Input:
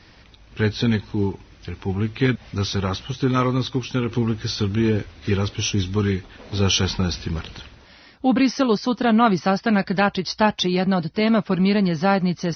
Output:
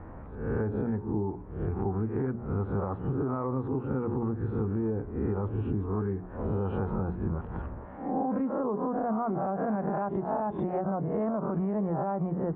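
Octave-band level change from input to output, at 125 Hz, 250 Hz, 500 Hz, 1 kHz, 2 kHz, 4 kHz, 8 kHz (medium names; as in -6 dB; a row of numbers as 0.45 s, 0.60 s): -8.0 dB, -9.5 dB, -7.0 dB, -8.5 dB, -20.5 dB, under -40 dB, no reading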